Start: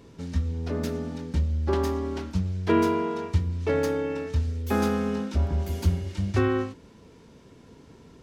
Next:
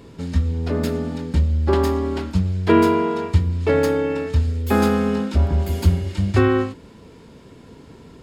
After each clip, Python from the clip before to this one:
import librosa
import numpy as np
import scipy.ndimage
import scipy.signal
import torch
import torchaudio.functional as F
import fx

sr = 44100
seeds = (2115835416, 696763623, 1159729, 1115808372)

y = fx.notch(x, sr, hz=5900.0, q=6.8)
y = F.gain(torch.from_numpy(y), 7.0).numpy()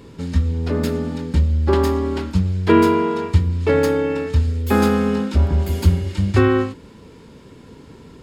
y = fx.peak_eq(x, sr, hz=680.0, db=-6.0, octaves=0.21)
y = F.gain(torch.from_numpy(y), 1.5).numpy()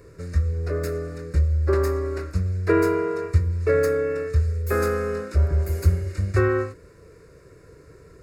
y = fx.fixed_phaser(x, sr, hz=870.0, stages=6)
y = F.gain(torch.from_numpy(y), -2.0).numpy()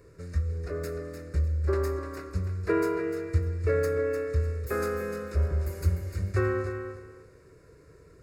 y = fx.echo_feedback(x, sr, ms=300, feedback_pct=22, wet_db=-8.5)
y = F.gain(torch.from_numpy(y), -6.5).numpy()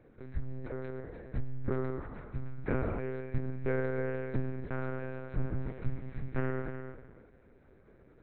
y = fx.lpc_monotone(x, sr, seeds[0], pitch_hz=130.0, order=8)
y = F.gain(torch.from_numpy(y), -5.5).numpy()